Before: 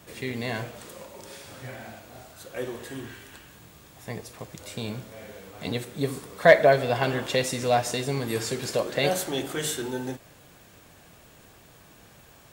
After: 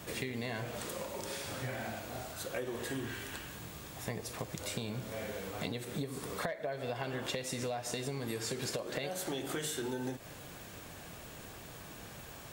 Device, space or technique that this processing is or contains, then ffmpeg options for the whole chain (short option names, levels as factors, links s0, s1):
serial compression, peaks first: -af "acompressor=threshold=0.0282:ratio=10,acompressor=threshold=0.01:ratio=3,volume=1.58"